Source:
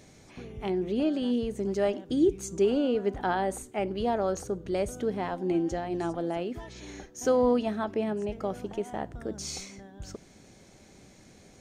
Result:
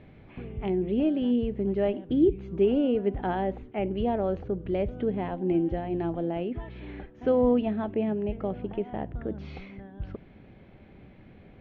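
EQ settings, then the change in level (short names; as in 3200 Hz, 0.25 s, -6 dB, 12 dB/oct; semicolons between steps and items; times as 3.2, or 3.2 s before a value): steep low-pass 3100 Hz 36 dB/oct; low shelf 210 Hz +7.5 dB; dynamic EQ 1300 Hz, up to -7 dB, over -45 dBFS, Q 1.4; 0.0 dB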